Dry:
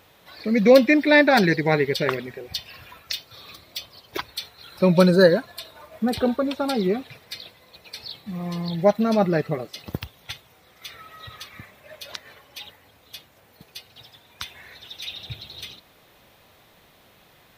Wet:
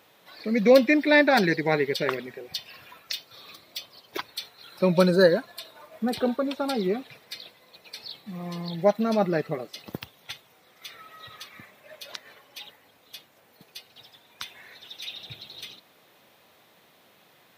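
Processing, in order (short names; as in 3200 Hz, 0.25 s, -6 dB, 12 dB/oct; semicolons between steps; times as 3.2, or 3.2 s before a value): HPF 170 Hz 12 dB/oct; gain -3 dB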